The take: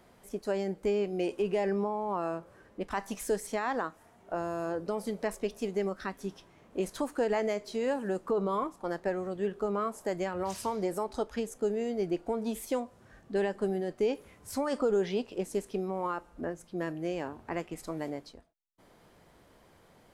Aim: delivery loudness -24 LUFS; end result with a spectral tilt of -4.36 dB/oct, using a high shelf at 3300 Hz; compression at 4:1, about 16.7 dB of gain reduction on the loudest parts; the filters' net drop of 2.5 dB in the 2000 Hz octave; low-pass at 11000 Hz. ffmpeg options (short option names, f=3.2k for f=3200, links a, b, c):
-af "lowpass=11k,equalizer=f=2k:t=o:g=-5.5,highshelf=f=3.3k:g=8,acompressor=threshold=-46dB:ratio=4,volume=23.5dB"